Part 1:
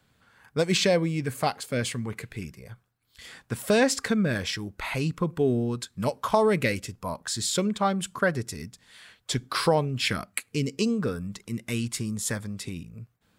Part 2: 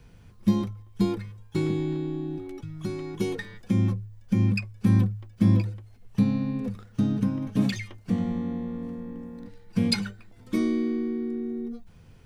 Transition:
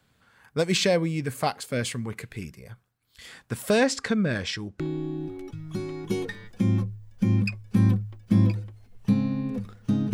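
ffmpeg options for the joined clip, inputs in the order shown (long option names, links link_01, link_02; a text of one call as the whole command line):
ffmpeg -i cue0.wav -i cue1.wav -filter_complex "[0:a]asettb=1/sr,asplit=3[link_01][link_02][link_03];[link_01]atrim=end=3.844[link_04];[link_02]atrim=start=3.84:end=4.8,asetpts=PTS-STARTPTS,afade=type=in:duration=0.004:curve=qsin,afade=type=out:start_time=0.956:duration=0.004:curve=qsin,lowpass=7000[link_05];[link_03]atrim=start=4.796[link_06];[link_04][link_05]acrossfade=duration=0.004:curve1=hsin:curve2=qsin[link_07];[link_07][link_06]acrossfade=duration=0.004:curve1=qsin:curve2=hsin,apad=whole_dur=10.13,atrim=end=10.13,atrim=end=4.802[link_08];[1:a]atrim=start=1.898:end=7.23[link_09];[link_08][link_09]acrossfade=duration=0.004:curve1=hsin:curve2=hsin" out.wav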